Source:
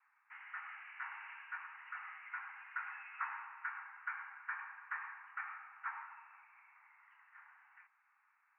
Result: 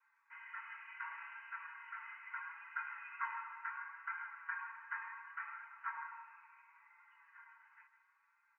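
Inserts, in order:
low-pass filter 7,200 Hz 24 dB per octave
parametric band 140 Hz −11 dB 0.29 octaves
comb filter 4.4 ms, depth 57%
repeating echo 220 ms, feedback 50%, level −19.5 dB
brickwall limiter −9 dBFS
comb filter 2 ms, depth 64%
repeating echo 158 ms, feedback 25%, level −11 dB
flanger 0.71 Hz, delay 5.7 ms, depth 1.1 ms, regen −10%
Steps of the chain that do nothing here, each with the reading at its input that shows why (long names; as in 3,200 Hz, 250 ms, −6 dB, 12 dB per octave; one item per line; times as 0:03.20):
low-pass filter 7,200 Hz: nothing at its input above 2,900 Hz
parametric band 140 Hz: nothing at its input below 680 Hz
brickwall limiter −9 dBFS: peak of its input −24.0 dBFS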